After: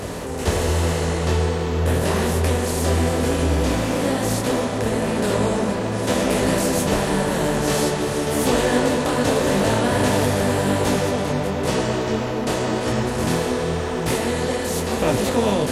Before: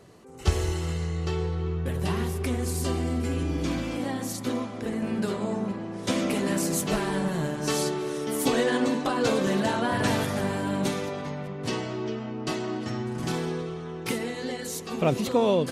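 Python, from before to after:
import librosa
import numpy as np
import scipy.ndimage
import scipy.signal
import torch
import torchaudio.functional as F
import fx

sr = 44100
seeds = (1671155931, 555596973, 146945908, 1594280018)

y = fx.bin_compress(x, sr, power=0.4)
y = fx.detune_double(y, sr, cents=32)
y = y * 10.0 ** (3.0 / 20.0)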